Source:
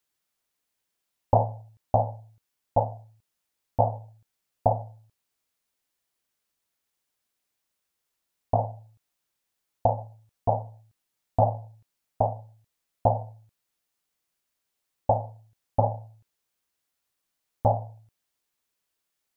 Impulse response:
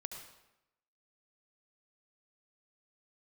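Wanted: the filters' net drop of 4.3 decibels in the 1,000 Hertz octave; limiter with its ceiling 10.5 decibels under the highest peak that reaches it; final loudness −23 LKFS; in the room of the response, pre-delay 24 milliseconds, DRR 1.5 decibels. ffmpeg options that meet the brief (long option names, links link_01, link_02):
-filter_complex "[0:a]equalizer=frequency=1000:width_type=o:gain=-6.5,alimiter=limit=-20dB:level=0:latency=1,asplit=2[link_01][link_02];[1:a]atrim=start_sample=2205,adelay=24[link_03];[link_02][link_03]afir=irnorm=-1:irlink=0,volume=0.5dB[link_04];[link_01][link_04]amix=inputs=2:normalize=0,volume=12.5dB"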